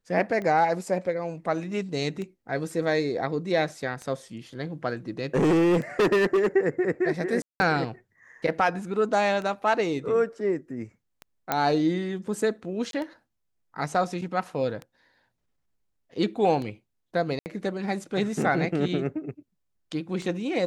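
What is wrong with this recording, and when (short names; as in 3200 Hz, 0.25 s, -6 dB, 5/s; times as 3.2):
tick 33 1/3 rpm -23 dBFS
5.35–6.47 clipped -18 dBFS
7.42–7.6 gap 0.18 s
11.52 pop -9 dBFS
12.91–12.93 gap 22 ms
17.39–17.46 gap 69 ms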